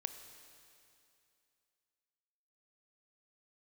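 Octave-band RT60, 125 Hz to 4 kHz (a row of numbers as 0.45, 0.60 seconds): 2.6, 2.6, 2.6, 2.6, 2.6, 2.6 seconds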